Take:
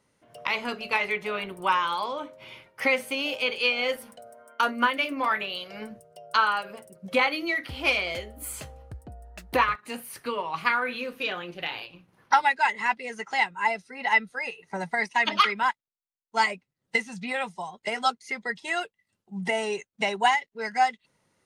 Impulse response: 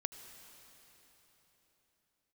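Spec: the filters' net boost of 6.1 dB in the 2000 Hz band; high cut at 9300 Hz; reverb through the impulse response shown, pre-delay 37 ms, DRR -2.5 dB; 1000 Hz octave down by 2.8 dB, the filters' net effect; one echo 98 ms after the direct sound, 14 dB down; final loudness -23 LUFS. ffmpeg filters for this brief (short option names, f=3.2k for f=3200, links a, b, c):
-filter_complex "[0:a]lowpass=9.3k,equalizer=f=1k:t=o:g=-6,equalizer=f=2k:t=o:g=8.5,aecho=1:1:98:0.2,asplit=2[a][b];[1:a]atrim=start_sample=2205,adelay=37[c];[b][c]afir=irnorm=-1:irlink=0,volume=3.5dB[d];[a][d]amix=inputs=2:normalize=0,volume=-4.5dB"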